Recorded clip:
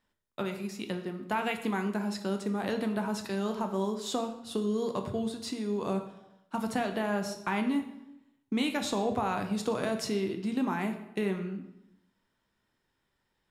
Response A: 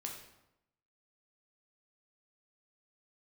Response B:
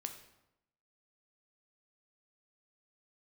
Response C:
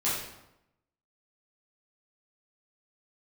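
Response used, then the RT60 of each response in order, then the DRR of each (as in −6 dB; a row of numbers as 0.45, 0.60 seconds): B; 0.90, 0.90, 0.90 seconds; 0.0, 5.5, −10.0 decibels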